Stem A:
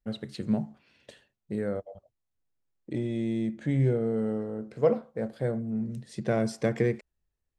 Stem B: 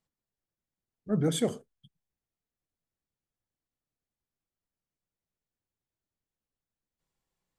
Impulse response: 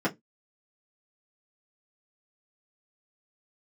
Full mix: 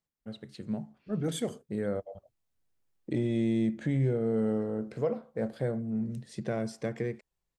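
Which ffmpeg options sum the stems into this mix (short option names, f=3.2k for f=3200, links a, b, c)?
-filter_complex "[0:a]dynaudnorm=f=220:g=17:m=13dB,adelay=200,volume=-7.5dB[a];[1:a]volume=-4.5dB[b];[a][b]amix=inputs=2:normalize=0,alimiter=limit=-20dB:level=0:latency=1:release=481"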